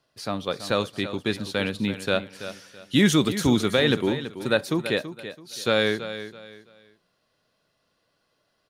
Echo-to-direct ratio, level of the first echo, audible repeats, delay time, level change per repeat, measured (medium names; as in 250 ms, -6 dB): -11.5 dB, -12.0 dB, 3, 331 ms, -11.0 dB